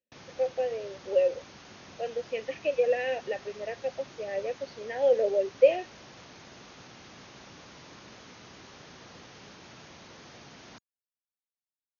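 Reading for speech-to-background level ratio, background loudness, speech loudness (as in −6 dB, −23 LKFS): 20.0 dB, −49.0 LKFS, −29.0 LKFS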